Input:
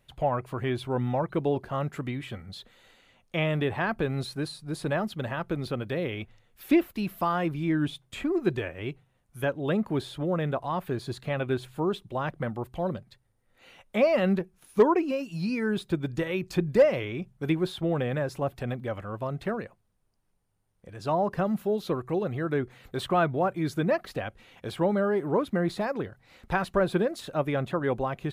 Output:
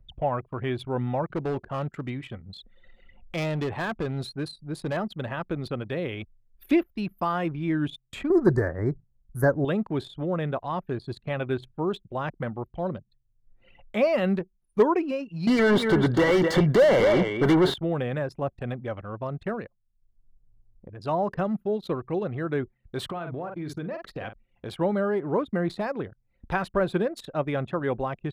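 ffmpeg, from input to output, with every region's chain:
-filter_complex "[0:a]asettb=1/sr,asplit=3[s0][s1][s2];[s0]atrim=end=1.304[s3];[s1]atrim=start=1.3:end=4.97,asetpts=PTS-STARTPTS,afade=t=in:d=0.004:c=qsin,afade=t=out:st=3.666:d=0.004:c=qsin,acompressor=mode=upward:threshold=0.00891:ratio=2.5:attack=3.2:release=140:knee=2.83:detection=peak,volume=15.8,asoftclip=hard,volume=0.0631[s4];[s2]atrim=start=4.966[s5];[s3][s4]acrossfade=d=0.004:c1=hsin:c2=qsin[s6];[s6][s5]acrossfade=d=0.004:c1=qsin:c2=hsin,asettb=1/sr,asplit=3[s7][s8][s9];[s7]atrim=end=8.304[s10];[s8]atrim=start=8.3:end=9.65,asetpts=PTS-STARTPTS,afade=t=in:d=0.004:c=qsin,afade=t=out:st=1.346:d=0.004:c=qsin,lowshelf=f=130:g=6,aeval=exprs='0.282*sin(PI/2*1.41*val(0)/0.282)':c=same,asuperstop=centerf=2900:order=8:qfactor=1.1[s11];[s9]atrim=start=9.646[s12];[s10][s11]acrossfade=d=0.004:c1=hsin:c2=qsin[s13];[s13][s12]acrossfade=d=0.004:c1=qsin:c2=hsin,asettb=1/sr,asplit=3[s14][s15][s16];[s14]atrim=end=15.474[s17];[s15]atrim=start=15.47:end=17.74,asetpts=PTS-STARTPTS,afade=t=in:d=0.004:c=qsin,afade=t=out:st=2.266:d=0.004:c=qsin,aecho=1:1:247:0.237,atrim=end_sample=100107,asplit=2[s18][s19];[s19]highpass=f=720:p=1,volume=44.7,asoftclip=type=tanh:threshold=0.299[s20];[s18][s20]amix=inputs=2:normalize=0,lowpass=f=1100:p=1,volume=0.501,asuperstop=centerf=2500:order=12:qfactor=6.4[s21];[s16]atrim=start=17.736[s22];[s17][s21]acrossfade=d=0.004:c1=hsin:c2=qsin[s23];[s23][s22]acrossfade=d=0.004:c1=qsin:c2=hsin,asettb=1/sr,asplit=3[s24][s25][s26];[s24]atrim=end=23.054[s27];[s25]atrim=start=23.05:end=24.7,asetpts=PTS-STARTPTS,afade=t=in:d=0.004:c=qsin,afade=t=out:st=1.646:d=0.004:c=qsin,asplit=2[s28][s29];[s29]adelay=46,volume=0.335[s30];[s28][s30]amix=inputs=2:normalize=0,atrim=end_sample=72765,acompressor=threshold=0.0355:ratio=16:attack=3.2:release=140:knee=1:detection=peak[s31];[s26]atrim=start=24.696[s32];[s27][s31]acrossfade=d=0.004:c1=hsin:c2=qsin[s33];[s33][s32]acrossfade=d=0.004:c1=qsin:c2=hsin,anlmdn=0.251,acompressor=mode=upward:threshold=0.0126:ratio=2.5"

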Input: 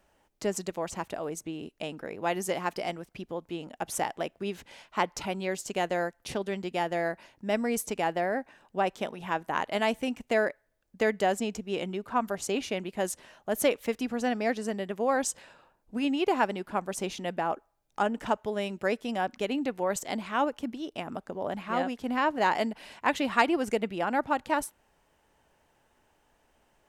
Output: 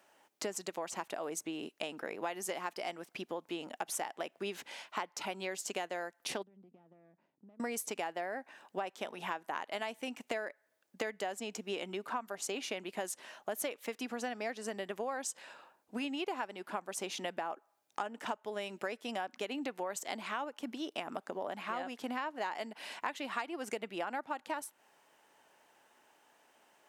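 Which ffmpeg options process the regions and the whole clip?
-filter_complex "[0:a]asettb=1/sr,asplit=3[s0][s1][s2];[s0]atrim=end=6.434[s3];[s1]atrim=start=6.43:end=7.6,asetpts=PTS-STARTPTS,afade=t=in:d=0.004:c=qsin,afade=t=out:st=1.166:d=0.004:c=qsin,aeval=exprs='if(lt(val(0),0),0.251*val(0),val(0))':c=same,acompressor=threshold=0.00794:ratio=12:attack=3.2:release=140:knee=1:detection=peak,bandpass=f=170:t=q:w=2.1[s4];[s2]atrim=start=7.596[s5];[s3][s4]acrossfade=d=0.004:c1=hsin:c2=qsin[s6];[s6][s5]acrossfade=d=0.004:c1=qsin:c2=hsin,highpass=340,equalizer=f=480:w=1.5:g=-3.5,acompressor=threshold=0.0126:ratio=8,volume=1.5"

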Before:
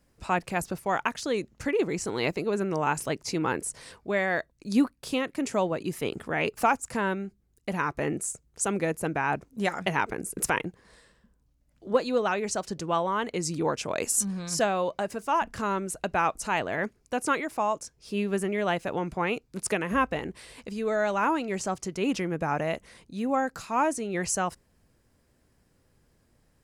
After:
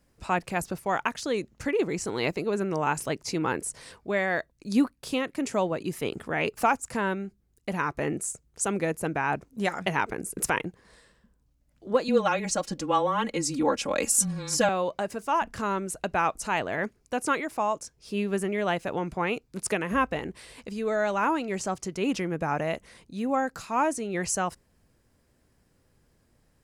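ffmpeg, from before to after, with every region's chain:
-filter_complex "[0:a]asettb=1/sr,asplit=3[s0][s1][s2];[s0]atrim=end=12.084[s3];[s1]atrim=start=12.08:end=14.69,asetpts=PTS-STARTPTS,afade=t=in:d=0.004:c=qsin,afade=t=out:st=2.606:d=0.004:c=qsin,aecho=1:1:3.6:0.92,atrim=end_sample=115101,afreqshift=-18[s4];[s2]atrim=start=14.686[s5];[s3][s4]acrossfade=d=0.004:c1=hsin:c2=qsin[s6];[s6][s5]acrossfade=d=0.004:c1=qsin:c2=hsin"

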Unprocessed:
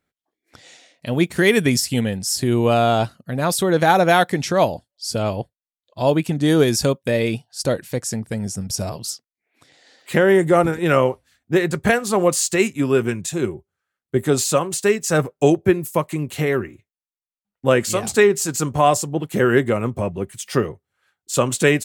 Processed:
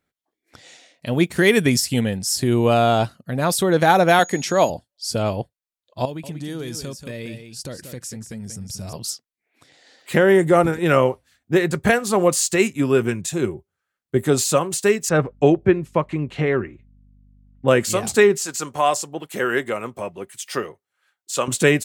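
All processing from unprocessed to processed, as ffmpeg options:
-filter_complex "[0:a]asettb=1/sr,asplit=3[s0][s1][s2];[s0]atrim=end=4.194[s3];[s1]atrim=start=4.19:end=4.7,asetpts=PTS-STARTPTS,afade=t=in:d=0.004:c=qsin,afade=t=out:st=0.506:d=0.004:c=qsin,highpass=180,aeval=exprs='val(0)+0.0158*sin(2*PI*6700*n/s)':c=same[s4];[s2]atrim=start=4.696[s5];[s3][s4]acrossfade=d=0.004:c1=hsin:c2=qsin[s6];[s6][s5]acrossfade=d=0.004:c1=qsin:c2=hsin,asettb=1/sr,asplit=3[s7][s8][s9];[s7]atrim=end=6.054[s10];[s8]atrim=start=6.05:end=8.93,asetpts=PTS-STARTPTS,afade=t=in:d=0.004:c=qsin,afade=t=out:st=2.876:d=0.004:c=qsin,equalizer=f=670:t=o:w=2.2:g=-6,acompressor=threshold=0.0251:ratio=2.5:attack=3.2:release=140:knee=1:detection=peak,aecho=1:1:185:0.355,atrim=end_sample=127008[s11];[s9]atrim=start=8.926[s12];[s10][s11]acrossfade=d=0.004:c1=hsin:c2=qsin[s13];[s13][s12]acrossfade=d=0.004:c1=qsin:c2=hsin,asettb=1/sr,asplit=3[s14][s15][s16];[s14]atrim=end=15.094[s17];[s15]atrim=start=15.09:end=17.68,asetpts=PTS-STARTPTS,afade=t=in:d=0.004:c=qsin,afade=t=out:st=2.586:d=0.004:c=qsin,lowpass=3100,aeval=exprs='val(0)+0.00282*(sin(2*PI*50*n/s)+sin(2*PI*2*50*n/s)/2+sin(2*PI*3*50*n/s)/3+sin(2*PI*4*50*n/s)/4+sin(2*PI*5*50*n/s)/5)':c=same[s18];[s16]atrim=start=17.676[s19];[s17][s18]acrossfade=d=0.004:c1=hsin:c2=qsin[s20];[s20][s19]acrossfade=d=0.004:c1=qsin:c2=hsin,asettb=1/sr,asplit=3[s21][s22][s23];[s21]atrim=end=18.374[s24];[s22]atrim=start=18.37:end=21.48,asetpts=PTS-STARTPTS,afade=t=in:d=0.004:c=qsin,afade=t=out:st=3.106:d=0.004:c=qsin,highpass=f=740:p=1,acrossover=split=7400[s25][s26];[s26]acompressor=threshold=0.0282:ratio=4:attack=1:release=60[s27];[s25][s27]amix=inputs=2:normalize=0[s28];[s23]atrim=start=21.476[s29];[s24][s28]acrossfade=d=0.004:c1=hsin:c2=qsin[s30];[s30][s29]acrossfade=d=0.004:c1=qsin:c2=hsin"

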